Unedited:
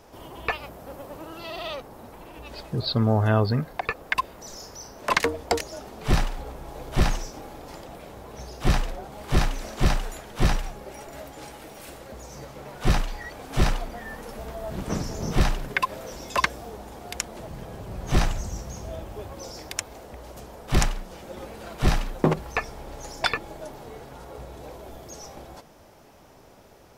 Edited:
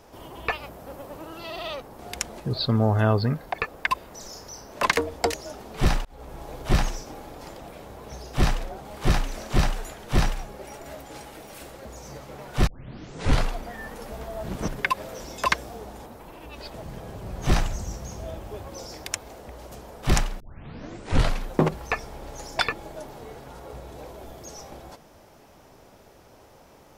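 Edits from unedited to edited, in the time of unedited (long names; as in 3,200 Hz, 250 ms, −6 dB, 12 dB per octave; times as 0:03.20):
0:01.99–0:02.67: swap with 0:16.98–0:17.39
0:06.32–0:06.61: fade in
0:12.94: tape start 0.86 s
0:14.95–0:15.60: remove
0:21.05: tape start 1.06 s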